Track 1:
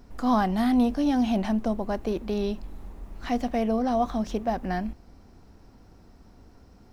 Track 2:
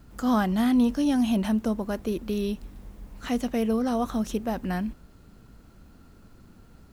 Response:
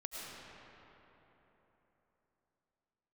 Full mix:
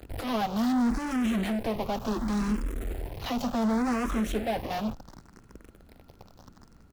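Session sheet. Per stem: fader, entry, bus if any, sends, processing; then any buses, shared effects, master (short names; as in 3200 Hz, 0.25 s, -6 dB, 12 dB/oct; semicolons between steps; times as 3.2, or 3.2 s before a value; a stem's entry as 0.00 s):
-12.5 dB, 0.00 s, no send, high shelf 5800 Hz +12 dB; fuzz box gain 46 dB, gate -45 dBFS; endless phaser +0.69 Hz
-4.0 dB, 8.8 ms, no send, soft clip -23 dBFS, distortion -12 dB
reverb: off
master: high shelf 3400 Hz -6.5 dB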